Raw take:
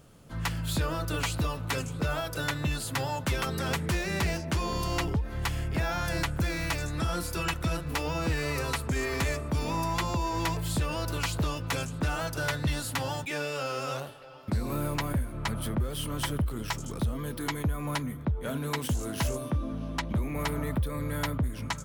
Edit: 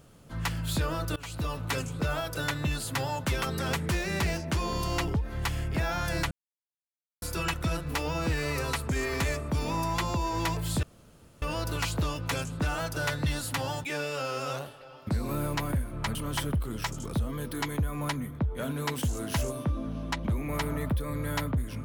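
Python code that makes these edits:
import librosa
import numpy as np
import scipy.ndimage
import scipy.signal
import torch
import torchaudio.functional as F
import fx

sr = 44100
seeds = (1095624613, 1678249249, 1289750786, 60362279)

y = fx.edit(x, sr, fx.fade_in_from(start_s=1.16, length_s=0.39, floor_db=-22.5),
    fx.silence(start_s=6.31, length_s=0.91),
    fx.insert_room_tone(at_s=10.83, length_s=0.59),
    fx.cut(start_s=15.56, length_s=0.45), tone=tone)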